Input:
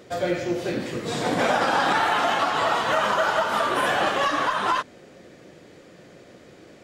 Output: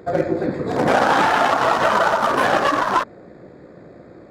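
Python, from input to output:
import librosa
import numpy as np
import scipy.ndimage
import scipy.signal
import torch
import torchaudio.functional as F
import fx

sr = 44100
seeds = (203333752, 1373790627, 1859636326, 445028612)

y = fx.wiener(x, sr, points=15)
y = fx.stretch_grains(y, sr, factor=0.63, grain_ms=34.0)
y = y * 10.0 ** (7.5 / 20.0)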